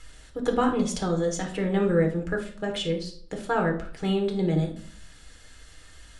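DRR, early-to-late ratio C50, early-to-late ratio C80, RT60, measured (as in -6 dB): 2.0 dB, 9.5 dB, 14.0 dB, 0.55 s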